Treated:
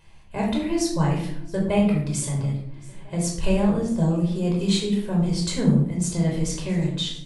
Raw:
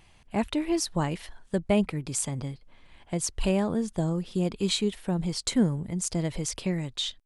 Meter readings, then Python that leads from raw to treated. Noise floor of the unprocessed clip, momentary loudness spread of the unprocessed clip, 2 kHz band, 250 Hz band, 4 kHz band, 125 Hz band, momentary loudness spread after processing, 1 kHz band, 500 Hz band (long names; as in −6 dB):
−57 dBFS, 7 LU, +3.0 dB, +5.5 dB, +2.0 dB, +8.0 dB, 8 LU, +3.5 dB, +3.5 dB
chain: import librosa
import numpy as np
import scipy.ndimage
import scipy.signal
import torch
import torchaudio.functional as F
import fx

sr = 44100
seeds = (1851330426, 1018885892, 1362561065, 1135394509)

p1 = x + fx.echo_feedback(x, sr, ms=673, feedback_pct=56, wet_db=-23, dry=0)
p2 = fx.room_shoebox(p1, sr, seeds[0], volume_m3=1000.0, walls='furnished', distance_m=5.1)
y = p2 * librosa.db_to_amplitude(-3.5)